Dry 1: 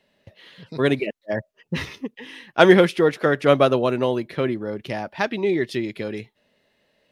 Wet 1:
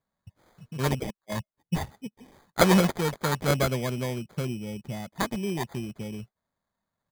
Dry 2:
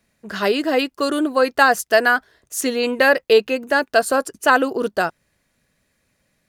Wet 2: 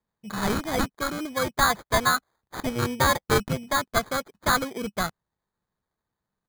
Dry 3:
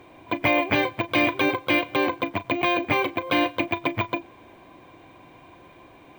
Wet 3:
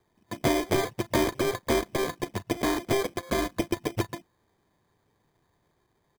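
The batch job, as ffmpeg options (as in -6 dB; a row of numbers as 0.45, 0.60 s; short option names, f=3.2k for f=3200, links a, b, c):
-af "afwtdn=0.0282,firequalizer=gain_entry='entry(200,0);entry(290,-13);entry(3700,7);entry(7400,-28);entry(12000,7)':delay=0.05:min_phase=1,acrusher=samples=16:mix=1:aa=0.000001"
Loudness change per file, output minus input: -7.0, -7.0, -4.5 LU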